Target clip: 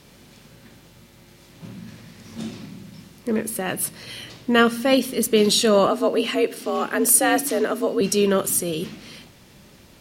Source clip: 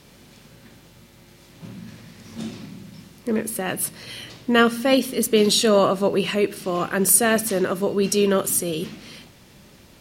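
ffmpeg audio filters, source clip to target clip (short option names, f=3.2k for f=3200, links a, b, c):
-filter_complex "[0:a]asettb=1/sr,asplit=3[a][b][c];[a]atrim=end=5.874[d];[b]atrim=start=5.87:end=8.01,asetpts=PTS-STARTPTS,afade=t=in:d=0.004:c=qsin,afade=t=out:st=2.136:d=0.004:c=qsin,afreqshift=60[e];[c]atrim=start=8.006[f];[d][e]acrossfade=d=0.004:c1=hsin:c2=qsin[g];[g][f]acrossfade=d=0.004:c1=qsin:c2=hsin"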